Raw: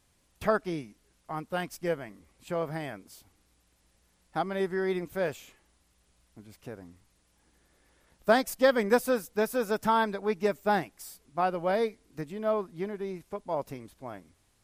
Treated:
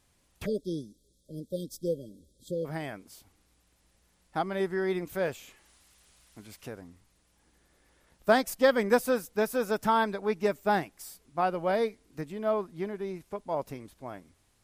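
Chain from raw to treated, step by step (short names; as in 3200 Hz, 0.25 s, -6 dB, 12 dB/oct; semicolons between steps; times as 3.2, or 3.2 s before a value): 0.46–2.65 spectral delete 620–3200 Hz; 5.07–6.81 mismatched tape noise reduction encoder only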